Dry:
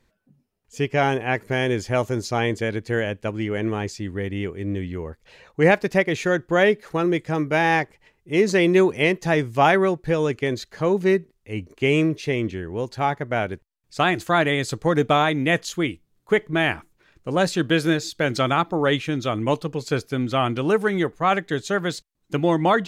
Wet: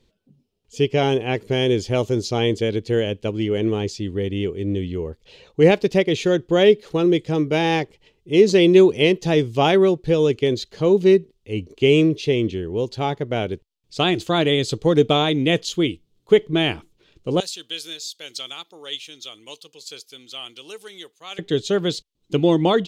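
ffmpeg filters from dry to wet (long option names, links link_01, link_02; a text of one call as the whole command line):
ffmpeg -i in.wav -filter_complex "[0:a]asettb=1/sr,asplit=3[link_01][link_02][link_03];[link_01]atrim=end=17.404[link_04];[link_02]atrim=start=17.4:end=21.39,asetpts=PTS-STARTPTS,afade=type=in:duration=0.004:curve=qsin,afade=type=out:start_time=3.986:duration=0.004:curve=qsin,aderivative[link_05];[link_03]atrim=start=21.386[link_06];[link_04][link_05]acrossfade=duration=0.004:curve1=hsin:curve2=qsin[link_07];[link_07][link_06]acrossfade=duration=0.004:curve1=qsin:curve2=hsin,firequalizer=gain_entry='entry(260,0);entry(430,4);entry(620,-4);entry(1700,-11);entry(3100,5);entry(5600,0);entry(11000,-7)':delay=0.05:min_phase=1,volume=2.5dB" out.wav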